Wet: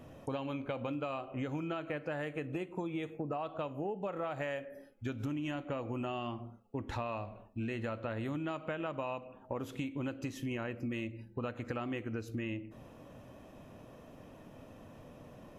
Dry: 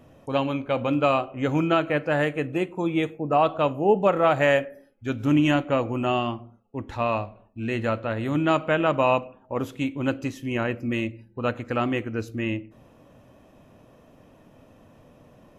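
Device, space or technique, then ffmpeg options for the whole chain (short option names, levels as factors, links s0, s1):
serial compression, peaks first: -af "acompressor=threshold=0.0316:ratio=6,acompressor=threshold=0.0158:ratio=2.5"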